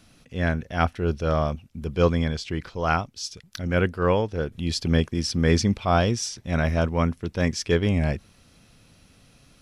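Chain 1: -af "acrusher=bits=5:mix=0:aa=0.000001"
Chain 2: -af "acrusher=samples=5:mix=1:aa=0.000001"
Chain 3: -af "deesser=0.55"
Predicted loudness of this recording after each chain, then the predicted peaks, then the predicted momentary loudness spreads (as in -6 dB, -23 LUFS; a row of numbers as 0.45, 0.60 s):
-24.5, -25.0, -25.0 LUFS; -7.0, -7.0, -7.0 dBFS; 10, 10, 10 LU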